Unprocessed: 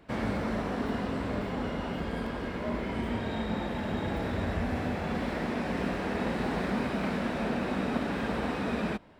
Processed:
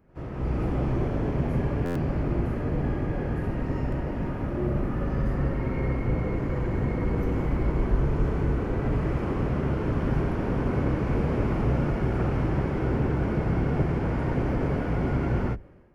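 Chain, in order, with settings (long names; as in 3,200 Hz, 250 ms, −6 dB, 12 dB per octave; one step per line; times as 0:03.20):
sub-octave generator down 1 octave, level −3 dB
wrong playback speed 78 rpm record played at 45 rpm
automatic gain control gain up to 10 dB
graphic EQ with 10 bands 125 Hz −3 dB, 1,000 Hz −6 dB, 4,000 Hz −7 dB, 8,000 Hz −5 dB
backwards echo 78 ms −22 dB
buffer that repeats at 0:01.85, samples 512, times 8
level −3.5 dB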